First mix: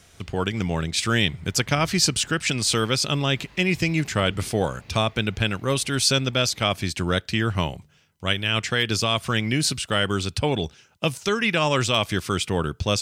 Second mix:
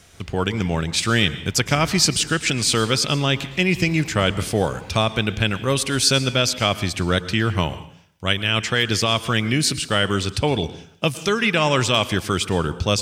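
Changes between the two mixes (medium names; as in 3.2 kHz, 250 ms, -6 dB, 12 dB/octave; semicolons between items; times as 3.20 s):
background +6.0 dB; reverb: on, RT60 0.60 s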